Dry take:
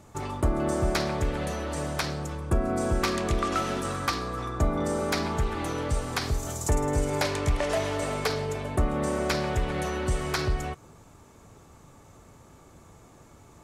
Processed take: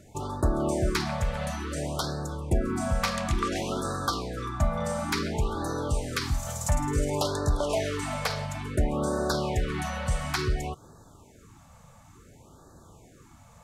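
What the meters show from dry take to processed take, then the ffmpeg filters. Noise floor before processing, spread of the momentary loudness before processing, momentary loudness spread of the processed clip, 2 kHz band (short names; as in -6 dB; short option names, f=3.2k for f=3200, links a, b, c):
-53 dBFS, 5 LU, 5 LU, -1.5 dB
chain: -af "afftfilt=real='re*(1-between(b*sr/1024,310*pow(2600/310,0.5+0.5*sin(2*PI*0.57*pts/sr))/1.41,310*pow(2600/310,0.5+0.5*sin(2*PI*0.57*pts/sr))*1.41))':imag='im*(1-between(b*sr/1024,310*pow(2600/310,0.5+0.5*sin(2*PI*0.57*pts/sr))/1.41,310*pow(2600/310,0.5+0.5*sin(2*PI*0.57*pts/sr))*1.41))':win_size=1024:overlap=0.75"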